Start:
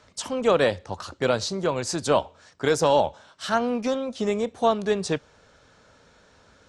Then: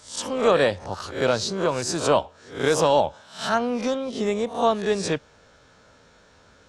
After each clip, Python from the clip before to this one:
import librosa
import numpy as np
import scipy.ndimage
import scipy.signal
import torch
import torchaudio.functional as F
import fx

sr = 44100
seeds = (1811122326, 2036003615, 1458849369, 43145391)

y = fx.spec_swells(x, sr, rise_s=0.4)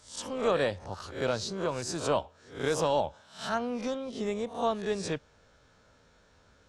y = fx.low_shelf(x, sr, hz=89.0, db=7.5)
y = F.gain(torch.from_numpy(y), -8.5).numpy()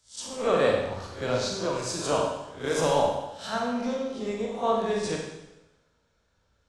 y = fx.rev_schroeder(x, sr, rt60_s=1.2, comb_ms=33, drr_db=-1.0)
y = fx.band_widen(y, sr, depth_pct=40)